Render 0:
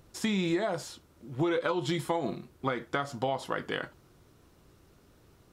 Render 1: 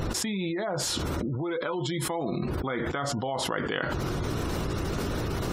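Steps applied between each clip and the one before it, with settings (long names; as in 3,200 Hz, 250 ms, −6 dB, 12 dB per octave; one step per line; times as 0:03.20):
gate on every frequency bin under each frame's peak −30 dB strong
envelope flattener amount 100%
level −5 dB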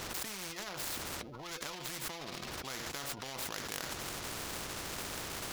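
running median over 15 samples
every bin compressed towards the loudest bin 4 to 1
level −3.5 dB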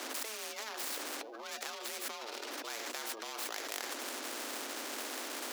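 frequency shifter +220 Hz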